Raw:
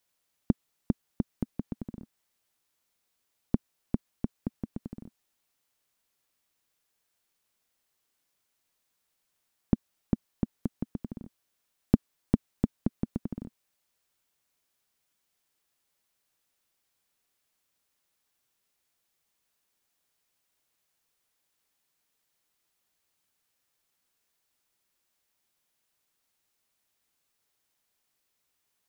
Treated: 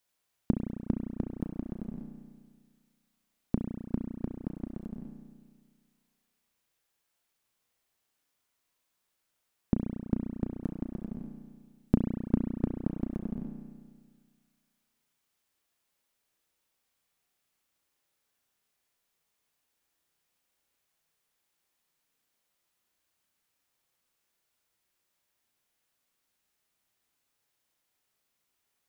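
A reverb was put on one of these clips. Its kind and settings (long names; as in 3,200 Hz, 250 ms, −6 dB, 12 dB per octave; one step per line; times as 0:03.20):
spring reverb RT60 1.7 s, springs 33 ms, chirp 70 ms, DRR 2.5 dB
level −2 dB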